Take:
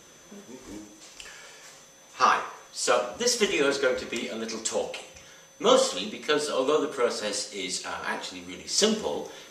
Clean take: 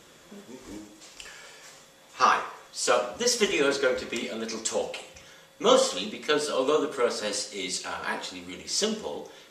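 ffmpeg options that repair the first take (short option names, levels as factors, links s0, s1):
-af "bandreject=f=6100:w=30,asetnsamples=n=441:p=0,asendcmd='8.78 volume volume -4.5dB',volume=1"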